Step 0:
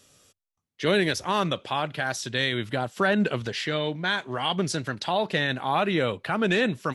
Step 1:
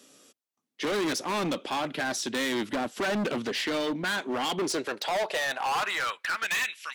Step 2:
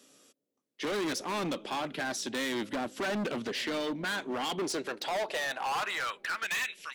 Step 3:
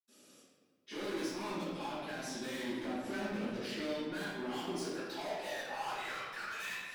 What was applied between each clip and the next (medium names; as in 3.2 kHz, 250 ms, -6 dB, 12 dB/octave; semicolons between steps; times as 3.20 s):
high-pass sweep 260 Hz -> 2.4 kHz, 4.40–6.73 s; overload inside the chain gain 27 dB; bass shelf 95 Hz -5.5 dB; trim +1.5 dB
bucket-brigade echo 270 ms, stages 1024, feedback 69%, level -19.5 dB; trim -4 dB
treble shelf 5.4 kHz +8 dB; compression 1.5:1, threshold -53 dBFS, peak gain reduction 9 dB; reverberation RT60 1.5 s, pre-delay 76 ms; trim +17 dB